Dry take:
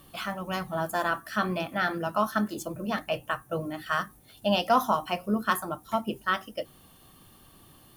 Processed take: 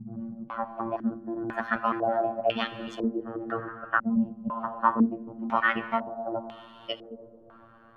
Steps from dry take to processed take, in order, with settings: slices in reverse order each 0.16 s, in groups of 5; robotiser 114 Hz; reverb RT60 3.8 s, pre-delay 39 ms, DRR 11.5 dB; stepped low-pass 2 Hz 200–3200 Hz

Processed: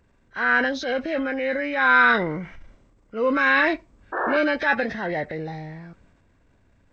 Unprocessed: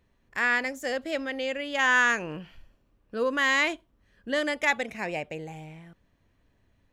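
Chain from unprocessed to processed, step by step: nonlinear frequency compression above 1200 Hz 1.5:1; painted sound noise, 4.12–4.37, 290–1800 Hz -30 dBFS; transient shaper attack -6 dB, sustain +5 dB; gain +6.5 dB

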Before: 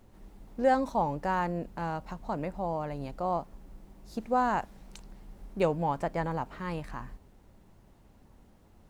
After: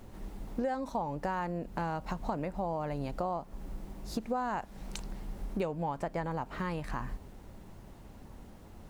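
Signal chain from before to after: compressor 8:1, threshold -39 dBFS, peak gain reduction 19 dB; gain +8 dB

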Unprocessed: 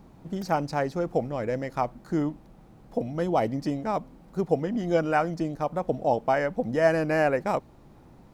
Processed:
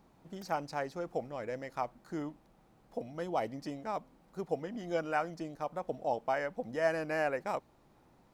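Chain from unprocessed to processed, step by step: low shelf 360 Hz -9.5 dB; gain -6.5 dB

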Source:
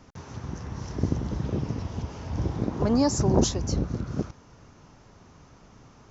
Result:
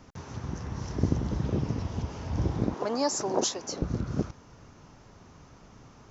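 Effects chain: 2.74–3.82 HPF 460 Hz 12 dB/oct

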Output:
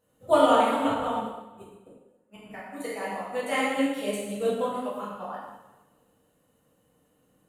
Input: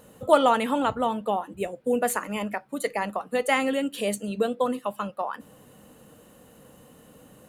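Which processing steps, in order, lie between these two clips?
1.16–2.46 flipped gate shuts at -20 dBFS, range -41 dB; plate-style reverb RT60 1.5 s, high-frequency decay 0.85×, DRR -8.5 dB; upward expander 1.5:1, over -41 dBFS; gain -7.5 dB

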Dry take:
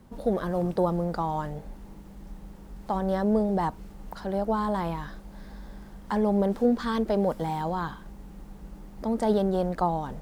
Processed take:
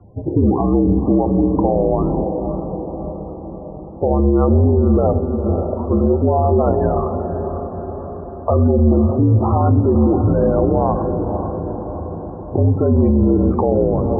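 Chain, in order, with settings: speaker cabinet 250–2200 Hz, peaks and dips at 260 Hz +4 dB, 450 Hz -3 dB, 930 Hz -5 dB, 1600 Hz -3 dB; gate -43 dBFS, range -7 dB; in parallel at -0.5 dB: compressor 6:1, threshold -38 dBFS, peak gain reduction 17 dB; on the sum: varispeed -28%; loudest bins only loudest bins 32; frequency shift -63 Hz; notches 60/120/180/240/300/360/420/480/540 Hz; on a send: diffused feedback echo 0.534 s, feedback 59%, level -9 dB; on the sum: spring tank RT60 1.1 s, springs 41 ms, chirp 50 ms, DRR 15.5 dB; maximiser +21.5 dB; gain -5.5 dB

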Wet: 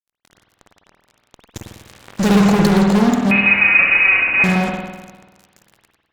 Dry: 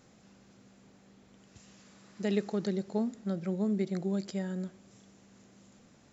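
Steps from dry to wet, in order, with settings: fuzz box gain 45 dB, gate -51 dBFS; 3.31–4.44 inverted band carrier 2700 Hz; spring tank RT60 1.2 s, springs 50 ms, chirp 60 ms, DRR 0 dB; gain -1 dB

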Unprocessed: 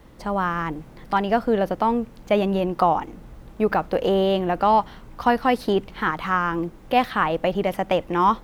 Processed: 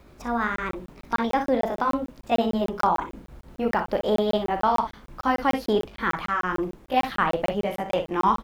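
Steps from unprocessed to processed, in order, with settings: gliding pitch shift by +3 st ending unshifted; early reflections 38 ms -10.5 dB, 60 ms -9.5 dB; crackling interface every 0.15 s, samples 1024, zero, from 0.56; gain -2 dB

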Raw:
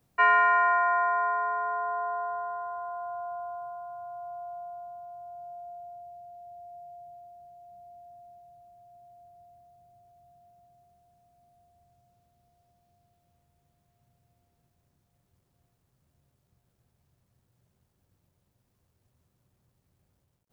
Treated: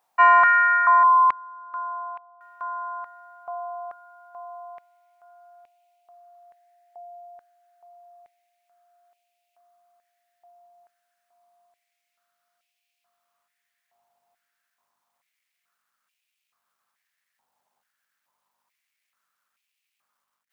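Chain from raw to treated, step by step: 1.03–2.41 spectral contrast raised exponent 3.3; hum 50 Hz, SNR 31 dB; stepped high-pass 2.3 Hz 850–2500 Hz

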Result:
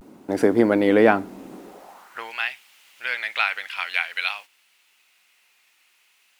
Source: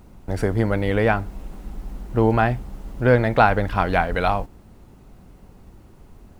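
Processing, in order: high-pass sweep 280 Hz -> 2500 Hz, 1.53–2.34; vibrato 0.49 Hz 54 cents; gain +1.5 dB

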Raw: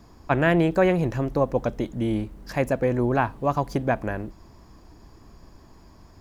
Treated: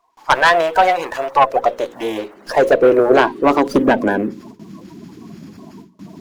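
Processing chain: bin magnitudes rounded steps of 30 dB; gate with hold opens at -41 dBFS; high-pass sweep 900 Hz -> 190 Hz, 1.23–4.68; in parallel at -10.5 dB: sine folder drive 12 dB, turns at -3 dBFS; on the sum: notches 60/120/180/240/300/360/420/480/540 Hz; running maximum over 3 samples; gain +2.5 dB

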